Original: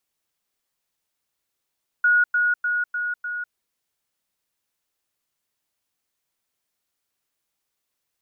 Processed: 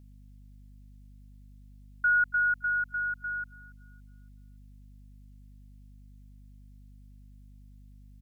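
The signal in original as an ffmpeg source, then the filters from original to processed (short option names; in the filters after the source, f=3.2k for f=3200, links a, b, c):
-f lavfi -i "aevalsrc='pow(10,(-14-3*floor(t/0.3))/20)*sin(2*PI*1450*t)*clip(min(mod(t,0.3),0.2-mod(t,0.3))/0.005,0,1)':d=1.5:s=44100"
-filter_complex "[0:a]equalizer=f=1.2k:t=o:w=0.6:g=-10.5,aeval=exprs='val(0)+0.00282*(sin(2*PI*50*n/s)+sin(2*PI*2*50*n/s)/2+sin(2*PI*3*50*n/s)/3+sin(2*PI*4*50*n/s)/4+sin(2*PI*5*50*n/s)/5)':c=same,asplit=2[a][b];[b]adelay=282,lowpass=f=1.4k:p=1,volume=-19.5dB,asplit=2[c][d];[d]adelay=282,lowpass=f=1.4k:p=1,volume=0.49,asplit=2[e][f];[f]adelay=282,lowpass=f=1.4k:p=1,volume=0.49,asplit=2[g][h];[h]adelay=282,lowpass=f=1.4k:p=1,volume=0.49[i];[a][c][e][g][i]amix=inputs=5:normalize=0"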